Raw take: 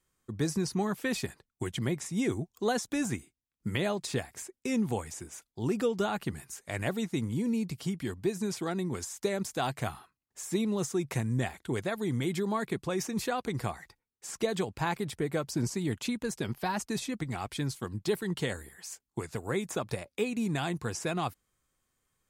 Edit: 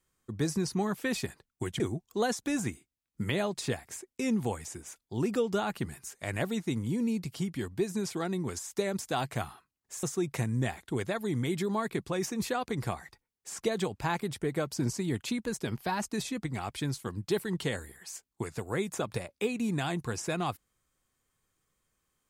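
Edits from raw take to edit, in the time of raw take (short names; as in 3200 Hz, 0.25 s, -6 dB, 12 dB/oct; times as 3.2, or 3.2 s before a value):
1.8–2.26 cut
10.49–10.8 cut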